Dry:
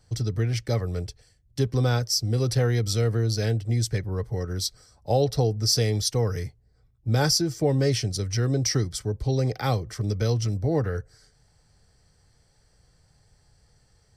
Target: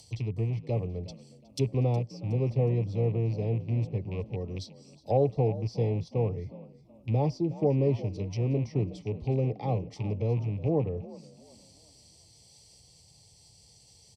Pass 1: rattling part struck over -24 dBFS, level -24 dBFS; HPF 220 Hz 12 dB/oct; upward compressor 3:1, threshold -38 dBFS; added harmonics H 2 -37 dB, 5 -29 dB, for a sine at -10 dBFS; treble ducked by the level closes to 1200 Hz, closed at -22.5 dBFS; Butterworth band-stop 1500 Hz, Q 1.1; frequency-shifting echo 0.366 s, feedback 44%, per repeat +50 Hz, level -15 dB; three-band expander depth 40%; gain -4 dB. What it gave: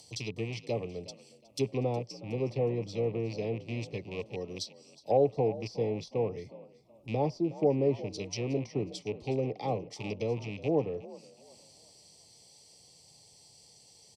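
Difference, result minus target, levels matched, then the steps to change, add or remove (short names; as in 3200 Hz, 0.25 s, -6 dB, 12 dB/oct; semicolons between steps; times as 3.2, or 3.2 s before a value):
125 Hz band -6.0 dB
change: HPF 86 Hz 12 dB/oct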